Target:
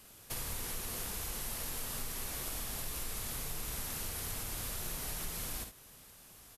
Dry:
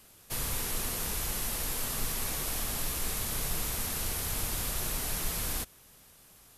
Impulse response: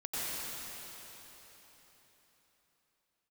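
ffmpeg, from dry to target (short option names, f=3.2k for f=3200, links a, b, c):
-af "acompressor=threshold=-37dB:ratio=6,aecho=1:1:53|73:0.422|0.266"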